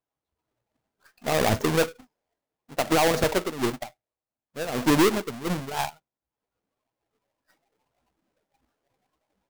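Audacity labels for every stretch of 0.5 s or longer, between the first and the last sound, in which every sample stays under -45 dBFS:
2.010000	2.700000	silence
3.890000	4.560000	silence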